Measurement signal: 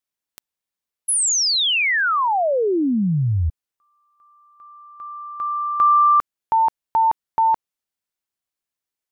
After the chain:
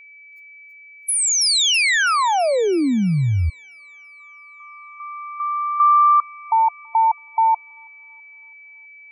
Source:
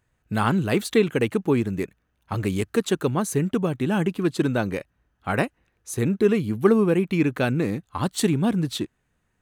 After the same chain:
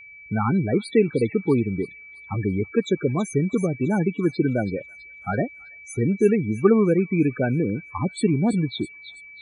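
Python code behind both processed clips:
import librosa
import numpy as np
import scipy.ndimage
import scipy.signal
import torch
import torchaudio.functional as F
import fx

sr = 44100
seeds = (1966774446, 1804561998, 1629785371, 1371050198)

y = fx.spec_topn(x, sr, count=16)
y = y + 10.0 ** (-43.0 / 20.0) * np.sin(2.0 * np.pi * 2300.0 * np.arange(len(y)) / sr)
y = fx.echo_wet_highpass(y, sr, ms=328, feedback_pct=48, hz=4100.0, wet_db=-6.0)
y = y * 10.0 ** (1.0 / 20.0)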